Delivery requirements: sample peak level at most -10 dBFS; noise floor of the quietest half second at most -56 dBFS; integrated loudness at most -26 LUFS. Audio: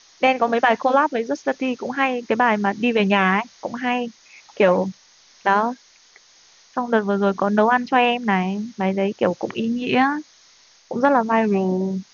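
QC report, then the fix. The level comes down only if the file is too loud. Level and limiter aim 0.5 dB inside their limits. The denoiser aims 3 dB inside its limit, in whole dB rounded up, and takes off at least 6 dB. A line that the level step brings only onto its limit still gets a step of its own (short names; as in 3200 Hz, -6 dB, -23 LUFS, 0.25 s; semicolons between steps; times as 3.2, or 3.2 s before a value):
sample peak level -4.5 dBFS: fail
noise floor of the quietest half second -53 dBFS: fail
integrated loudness -20.5 LUFS: fail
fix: gain -6 dB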